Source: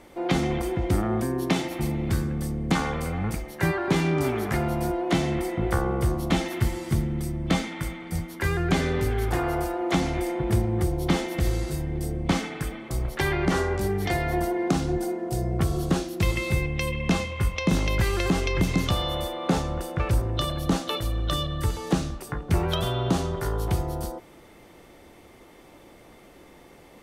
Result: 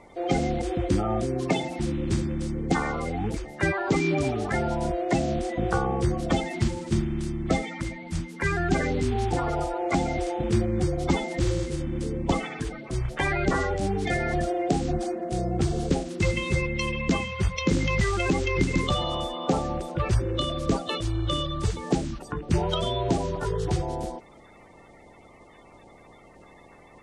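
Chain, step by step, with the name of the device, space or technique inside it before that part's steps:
clip after many re-uploads (low-pass filter 8,200 Hz 24 dB per octave; spectral magnitudes quantised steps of 30 dB)

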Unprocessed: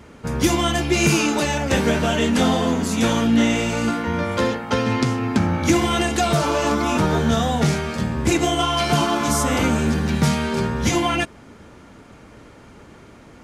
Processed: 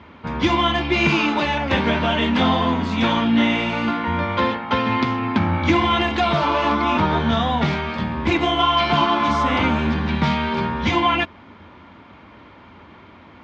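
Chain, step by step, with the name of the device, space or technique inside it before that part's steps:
guitar cabinet (loudspeaker in its box 75–4,000 Hz, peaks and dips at 88 Hz +6 dB, 130 Hz −9 dB, 450 Hz −6 dB, 1,000 Hz +8 dB, 2,200 Hz +4 dB, 3,400 Hz +4 dB)

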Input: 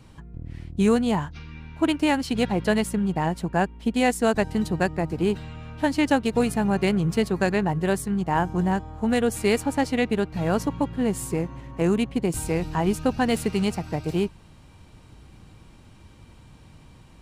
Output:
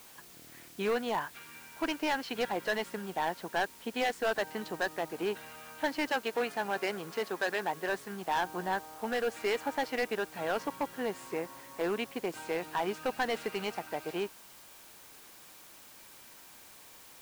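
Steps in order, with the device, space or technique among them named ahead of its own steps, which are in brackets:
drive-through speaker (band-pass filter 500–3,500 Hz; parametric band 1,600 Hz +4.5 dB 0.33 octaves; hard clipping −22.5 dBFS, distortion −9 dB; white noise bed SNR 19 dB)
0:06.10–0:07.89: high-pass filter 210 Hz 6 dB per octave
level −2.5 dB

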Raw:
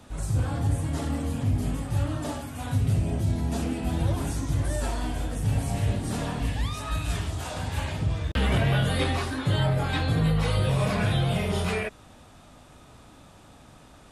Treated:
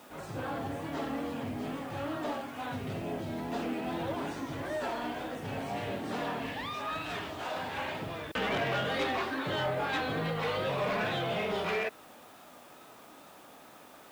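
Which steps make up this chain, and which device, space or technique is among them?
tape answering machine (band-pass filter 330–3,100 Hz; soft clipping −26.5 dBFS, distortion −16 dB; tape wow and flutter; white noise bed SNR 26 dB)
level +1.5 dB

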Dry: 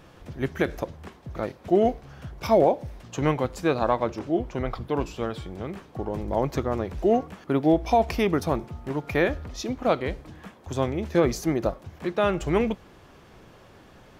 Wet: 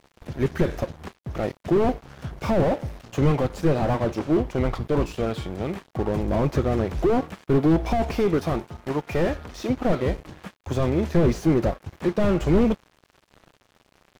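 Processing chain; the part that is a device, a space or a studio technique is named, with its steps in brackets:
0:08.11–0:09.70: low-shelf EQ 350 Hz −5.5 dB
early transistor amplifier (dead-zone distortion −46 dBFS; slew-rate limiting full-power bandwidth 24 Hz)
level +7.5 dB

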